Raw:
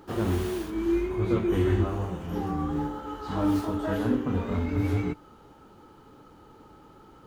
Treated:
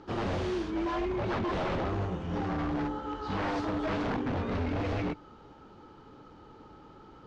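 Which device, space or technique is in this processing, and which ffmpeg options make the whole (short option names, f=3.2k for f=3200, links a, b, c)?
synthesiser wavefolder: -af "aeval=exprs='0.0501*(abs(mod(val(0)/0.0501+3,4)-2)-1)':c=same,lowpass=f=5.8k:w=0.5412,lowpass=f=5.8k:w=1.3066"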